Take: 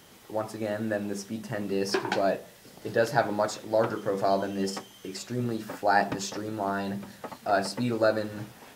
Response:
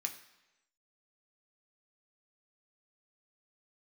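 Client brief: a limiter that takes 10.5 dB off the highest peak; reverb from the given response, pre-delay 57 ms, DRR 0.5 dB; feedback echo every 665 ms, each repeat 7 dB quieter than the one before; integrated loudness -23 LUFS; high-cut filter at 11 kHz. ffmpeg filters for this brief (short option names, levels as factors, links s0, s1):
-filter_complex "[0:a]lowpass=11000,alimiter=limit=0.119:level=0:latency=1,aecho=1:1:665|1330|1995|2660|3325:0.447|0.201|0.0905|0.0407|0.0183,asplit=2[s0][s1];[1:a]atrim=start_sample=2205,adelay=57[s2];[s1][s2]afir=irnorm=-1:irlink=0,volume=1[s3];[s0][s3]amix=inputs=2:normalize=0,volume=2"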